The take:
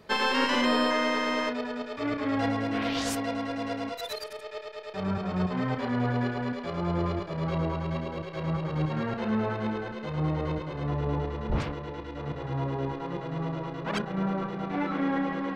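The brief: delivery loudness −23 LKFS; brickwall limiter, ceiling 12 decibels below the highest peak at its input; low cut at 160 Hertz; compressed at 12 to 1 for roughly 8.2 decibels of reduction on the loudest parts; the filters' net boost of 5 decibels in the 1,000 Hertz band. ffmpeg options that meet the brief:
ffmpeg -i in.wav -af "highpass=160,equalizer=frequency=1000:width_type=o:gain=6,acompressor=threshold=-27dB:ratio=12,volume=13.5dB,alimiter=limit=-14.5dB:level=0:latency=1" out.wav

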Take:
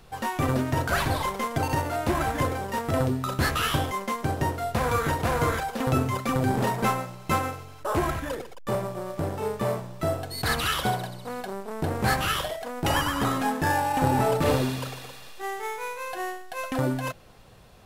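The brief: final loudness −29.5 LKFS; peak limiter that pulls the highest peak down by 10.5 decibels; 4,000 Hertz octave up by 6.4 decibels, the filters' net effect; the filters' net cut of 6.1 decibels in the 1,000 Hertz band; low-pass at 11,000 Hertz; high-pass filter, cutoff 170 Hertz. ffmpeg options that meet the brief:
ffmpeg -i in.wav -af "highpass=170,lowpass=11000,equalizer=frequency=1000:width_type=o:gain=-8.5,equalizer=frequency=4000:width_type=o:gain=9,volume=1.5dB,alimiter=limit=-18.5dB:level=0:latency=1" out.wav

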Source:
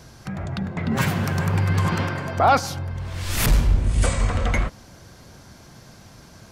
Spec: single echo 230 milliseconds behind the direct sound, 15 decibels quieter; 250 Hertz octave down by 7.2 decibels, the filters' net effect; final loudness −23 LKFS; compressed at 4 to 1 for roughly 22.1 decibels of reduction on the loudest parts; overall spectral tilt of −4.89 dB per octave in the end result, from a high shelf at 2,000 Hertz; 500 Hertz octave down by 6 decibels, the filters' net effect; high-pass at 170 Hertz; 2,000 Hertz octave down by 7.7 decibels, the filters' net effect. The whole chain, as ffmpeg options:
ffmpeg -i in.wav -af "highpass=170,equalizer=frequency=250:width_type=o:gain=-6.5,equalizer=frequency=500:width_type=o:gain=-5.5,highshelf=frequency=2000:gain=-5,equalizer=frequency=2000:width_type=o:gain=-7,acompressor=threshold=-45dB:ratio=4,aecho=1:1:230:0.178,volume=23.5dB" out.wav

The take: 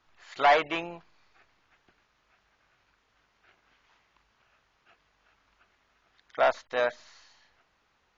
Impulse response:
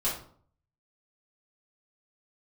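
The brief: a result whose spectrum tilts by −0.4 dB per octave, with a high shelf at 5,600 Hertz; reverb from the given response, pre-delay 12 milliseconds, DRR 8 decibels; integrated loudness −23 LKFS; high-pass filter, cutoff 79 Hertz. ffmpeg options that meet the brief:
-filter_complex "[0:a]highpass=79,highshelf=frequency=5600:gain=-4,asplit=2[link_01][link_02];[1:a]atrim=start_sample=2205,adelay=12[link_03];[link_02][link_03]afir=irnorm=-1:irlink=0,volume=-15.5dB[link_04];[link_01][link_04]amix=inputs=2:normalize=0,volume=3dB"

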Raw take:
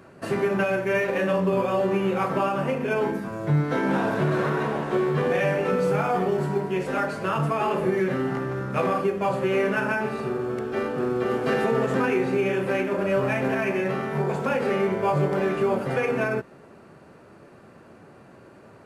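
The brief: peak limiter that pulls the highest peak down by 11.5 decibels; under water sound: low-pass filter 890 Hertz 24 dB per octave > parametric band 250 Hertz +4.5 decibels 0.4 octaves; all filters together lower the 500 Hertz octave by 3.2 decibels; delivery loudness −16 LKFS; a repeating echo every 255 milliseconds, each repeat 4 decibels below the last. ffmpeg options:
ffmpeg -i in.wav -af "equalizer=frequency=500:width_type=o:gain=-4.5,alimiter=limit=-23.5dB:level=0:latency=1,lowpass=frequency=890:width=0.5412,lowpass=frequency=890:width=1.3066,equalizer=frequency=250:width_type=o:width=0.4:gain=4.5,aecho=1:1:255|510|765|1020|1275|1530|1785|2040|2295:0.631|0.398|0.25|0.158|0.0994|0.0626|0.0394|0.0249|0.0157,volume=13.5dB" out.wav

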